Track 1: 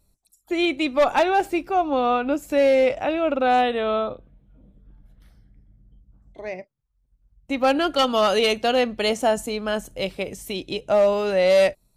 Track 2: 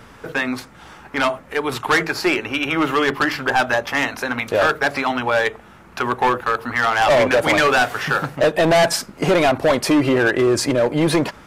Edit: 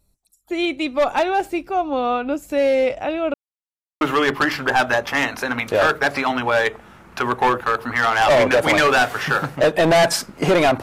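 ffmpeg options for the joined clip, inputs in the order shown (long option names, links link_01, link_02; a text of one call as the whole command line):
ffmpeg -i cue0.wav -i cue1.wav -filter_complex "[0:a]apad=whole_dur=10.82,atrim=end=10.82,asplit=2[link_01][link_02];[link_01]atrim=end=3.34,asetpts=PTS-STARTPTS,afade=type=out:start_time=3.336:duration=0.004:curve=hsin[link_03];[link_02]atrim=start=3.34:end=4.01,asetpts=PTS-STARTPTS,volume=0[link_04];[1:a]atrim=start=2.81:end=9.62,asetpts=PTS-STARTPTS,afade=type=in:duration=0.004:curve=hsin[link_05];[link_03][link_04][link_05]concat=n=3:v=0:a=1" out.wav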